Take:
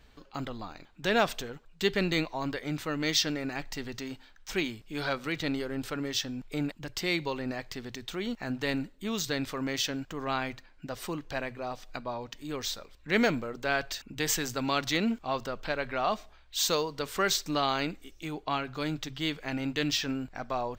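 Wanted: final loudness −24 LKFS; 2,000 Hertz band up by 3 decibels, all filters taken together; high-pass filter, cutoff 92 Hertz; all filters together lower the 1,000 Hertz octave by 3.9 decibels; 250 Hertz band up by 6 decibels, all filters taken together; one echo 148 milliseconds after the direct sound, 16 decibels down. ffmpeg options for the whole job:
ffmpeg -i in.wav -af "highpass=92,equalizer=frequency=250:width_type=o:gain=7.5,equalizer=frequency=1000:width_type=o:gain=-8,equalizer=frequency=2000:width_type=o:gain=6,aecho=1:1:148:0.158,volume=5dB" out.wav

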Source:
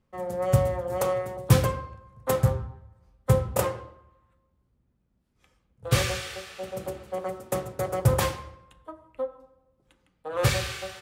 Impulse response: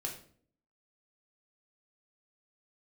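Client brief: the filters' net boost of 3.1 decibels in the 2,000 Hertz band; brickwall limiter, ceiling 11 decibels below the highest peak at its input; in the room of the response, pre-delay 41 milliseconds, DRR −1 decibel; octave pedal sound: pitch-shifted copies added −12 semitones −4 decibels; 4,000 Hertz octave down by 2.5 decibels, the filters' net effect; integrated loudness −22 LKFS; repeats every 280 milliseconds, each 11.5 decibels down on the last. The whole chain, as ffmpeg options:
-filter_complex "[0:a]equalizer=frequency=2000:width_type=o:gain=5,equalizer=frequency=4000:width_type=o:gain=-5,alimiter=limit=-17.5dB:level=0:latency=1,aecho=1:1:280|560|840:0.266|0.0718|0.0194,asplit=2[link_01][link_02];[1:a]atrim=start_sample=2205,adelay=41[link_03];[link_02][link_03]afir=irnorm=-1:irlink=0,volume=0.5dB[link_04];[link_01][link_04]amix=inputs=2:normalize=0,asplit=2[link_05][link_06];[link_06]asetrate=22050,aresample=44100,atempo=2,volume=-4dB[link_07];[link_05][link_07]amix=inputs=2:normalize=0,volume=2.5dB"

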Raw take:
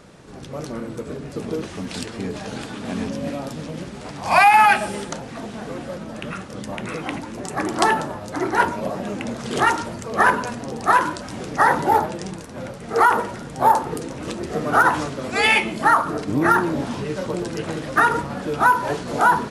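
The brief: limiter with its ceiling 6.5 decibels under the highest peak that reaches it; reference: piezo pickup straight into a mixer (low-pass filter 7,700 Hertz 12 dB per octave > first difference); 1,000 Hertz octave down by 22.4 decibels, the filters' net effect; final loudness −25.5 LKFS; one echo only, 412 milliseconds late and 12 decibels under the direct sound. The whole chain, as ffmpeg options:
ffmpeg -i in.wav -af "equalizer=frequency=1000:width_type=o:gain=-7,alimiter=limit=-12dB:level=0:latency=1,lowpass=7700,aderivative,aecho=1:1:412:0.251,volume=13.5dB" out.wav

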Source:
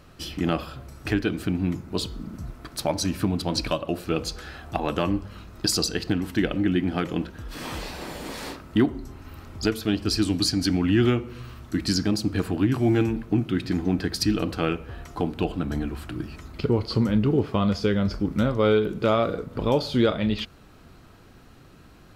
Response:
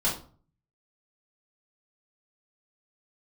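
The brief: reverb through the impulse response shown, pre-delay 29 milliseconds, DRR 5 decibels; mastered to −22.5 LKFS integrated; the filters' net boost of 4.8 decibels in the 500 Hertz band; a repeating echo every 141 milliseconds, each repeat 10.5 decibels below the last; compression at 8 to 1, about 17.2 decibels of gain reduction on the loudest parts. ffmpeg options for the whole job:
-filter_complex "[0:a]equalizer=frequency=500:width_type=o:gain=6,acompressor=threshold=-31dB:ratio=8,aecho=1:1:141|282|423:0.299|0.0896|0.0269,asplit=2[link_01][link_02];[1:a]atrim=start_sample=2205,adelay=29[link_03];[link_02][link_03]afir=irnorm=-1:irlink=0,volume=-14.5dB[link_04];[link_01][link_04]amix=inputs=2:normalize=0,volume=11.5dB"

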